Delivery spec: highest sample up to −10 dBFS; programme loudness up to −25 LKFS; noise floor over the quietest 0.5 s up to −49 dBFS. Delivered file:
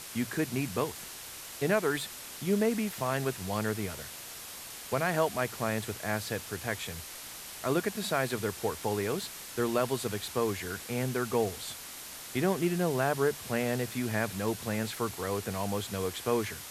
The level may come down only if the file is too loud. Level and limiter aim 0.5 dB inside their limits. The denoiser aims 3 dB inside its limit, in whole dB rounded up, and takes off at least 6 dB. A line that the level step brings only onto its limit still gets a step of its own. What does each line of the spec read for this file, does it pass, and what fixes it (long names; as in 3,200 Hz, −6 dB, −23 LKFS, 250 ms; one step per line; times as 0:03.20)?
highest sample −14.0 dBFS: in spec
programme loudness −32.5 LKFS: in spec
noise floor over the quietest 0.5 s −44 dBFS: out of spec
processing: broadband denoise 8 dB, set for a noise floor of −44 dBFS